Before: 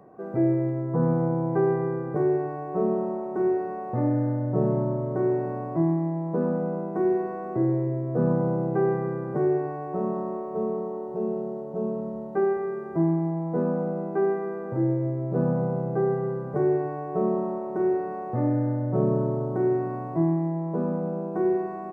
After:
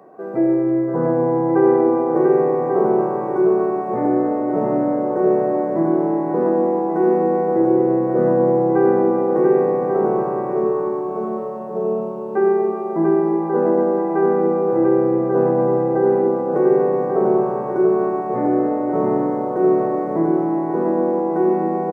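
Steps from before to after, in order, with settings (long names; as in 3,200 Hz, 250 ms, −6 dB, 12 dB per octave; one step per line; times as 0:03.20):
high-pass filter 280 Hz 12 dB per octave
bouncing-ball delay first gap 690 ms, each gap 0.65×, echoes 5
reverb whose tail is shaped and stops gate 450 ms flat, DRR 5 dB
level +6.5 dB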